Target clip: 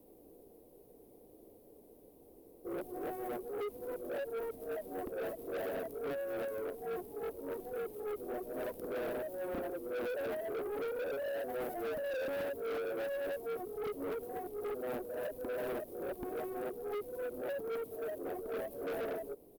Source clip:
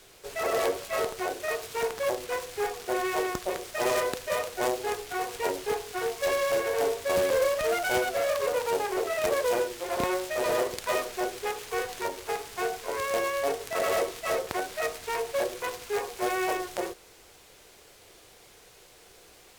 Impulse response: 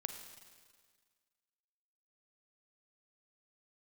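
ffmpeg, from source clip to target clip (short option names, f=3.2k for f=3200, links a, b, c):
-filter_complex "[0:a]areverse,bandreject=f=370:w=12,acrossover=split=800|1900[a][b][c];[c]aexciter=amount=9.8:drive=1.5:freq=9.7k[d];[a][b][d]amix=inputs=3:normalize=0,firequalizer=gain_entry='entry(120,0);entry(260,14);entry(1400,-24);entry(14000,-17)':delay=0.05:min_phase=1,asoftclip=type=tanh:threshold=-29dB,volume=-6.5dB"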